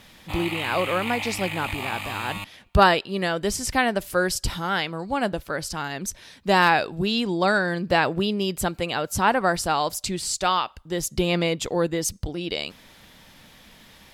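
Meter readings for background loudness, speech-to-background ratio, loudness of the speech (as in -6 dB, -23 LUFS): -31.0 LUFS, 6.5 dB, -24.5 LUFS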